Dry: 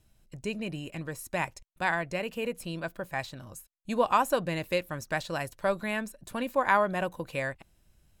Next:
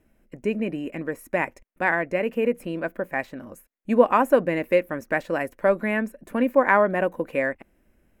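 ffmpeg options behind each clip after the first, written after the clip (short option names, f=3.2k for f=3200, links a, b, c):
-af "equalizer=f=125:t=o:w=1:g=-8,equalizer=f=250:t=o:w=1:g=12,equalizer=f=500:t=o:w=1:g=8,equalizer=f=2k:t=o:w=1:g=10,equalizer=f=4k:t=o:w=1:g=-12,equalizer=f=8k:t=o:w=1:g=-6"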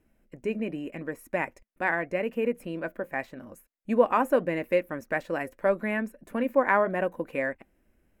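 -af "flanger=delay=0.7:depth=2.2:regen=-86:speed=0.82:shape=triangular"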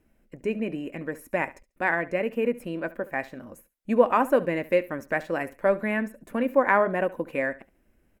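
-af "aecho=1:1:70|140:0.119|0.025,volume=2dB"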